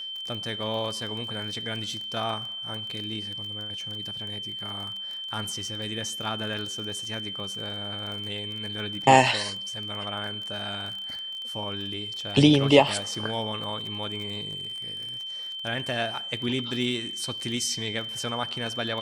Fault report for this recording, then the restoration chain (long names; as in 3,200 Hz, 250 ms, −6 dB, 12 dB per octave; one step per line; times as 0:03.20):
surface crackle 22 per second −33 dBFS
whistle 3,100 Hz −33 dBFS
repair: click removal
notch filter 3,100 Hz, Q 30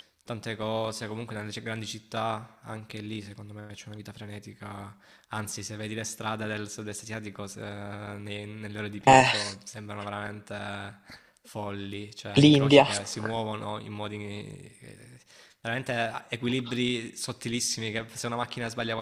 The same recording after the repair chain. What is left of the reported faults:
none of them is left